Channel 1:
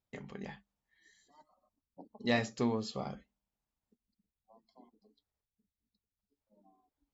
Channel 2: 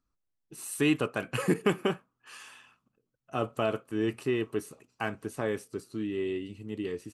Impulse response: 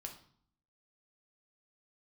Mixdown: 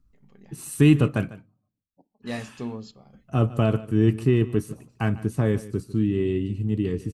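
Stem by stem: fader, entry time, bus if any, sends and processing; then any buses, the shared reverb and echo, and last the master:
1.90 s -13 dB -> 2.12 s -5.5 dB, 0.00 s, send -14.5 dB, no echo send, trance gate ".xxx.xxxx" 67 bpm -12 dB
+0.5 dB, 0.00 s, muted 1.31–2.22 s, send -17.5 dB, echo send -17 dB, tone controls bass +12 dB, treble +1 dB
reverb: on, RT60 0.55 s, pre-delay 5 ms
echo: delay 149 ms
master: bass shelf 250 Hz +8 dB

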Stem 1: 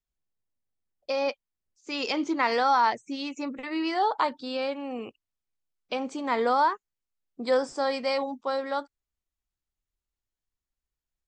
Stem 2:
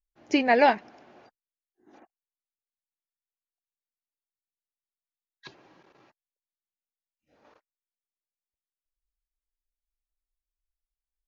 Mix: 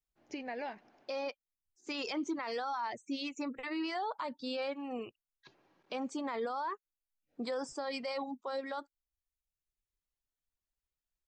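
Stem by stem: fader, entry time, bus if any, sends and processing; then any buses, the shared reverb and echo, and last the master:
-3.0 dB, 0.00 s, no send, reverb removal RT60 0.89 s
-13.0 dB, 0.00 s, no send, peak limiter -12.5 dBFS, peak gain reduction 4 dB; compression, threshold -24 dBFS, peak gain reduction 7 dB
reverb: none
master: peak limiter -29 dBFS, peak gain reduction 14.5 dB

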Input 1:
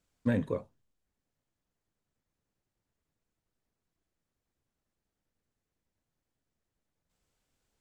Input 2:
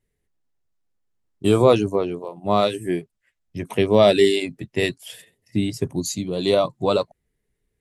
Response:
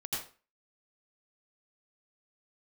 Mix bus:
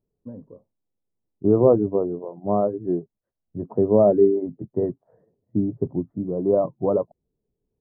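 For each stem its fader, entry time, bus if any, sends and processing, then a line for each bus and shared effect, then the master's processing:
-3.0 dB, 0.00 s, no send, auto duck -23 dB, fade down 1.95 s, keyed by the second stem
+2.5 dB, 0.00 s, no send, none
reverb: none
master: Gaussian low-pass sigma 11 samples; bass shelf 110 Hz -10.5 dB

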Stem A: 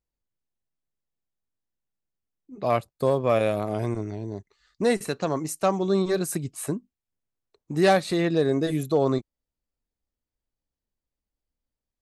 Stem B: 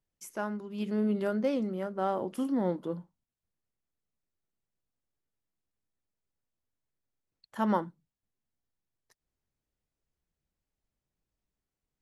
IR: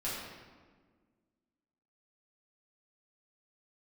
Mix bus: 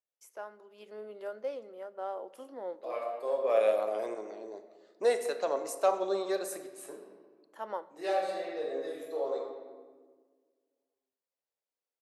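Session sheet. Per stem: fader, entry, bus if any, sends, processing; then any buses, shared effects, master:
-0.5 dB, 0.20 s, send -10 dB, auto duck -21 dB, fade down 1.05 s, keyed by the second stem
-2.5 dB, 0.00 s, send -22 dB, none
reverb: on, RT60 1.5 s, pre-delay 4 ms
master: ladder high-pass 420 Hz, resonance 40%

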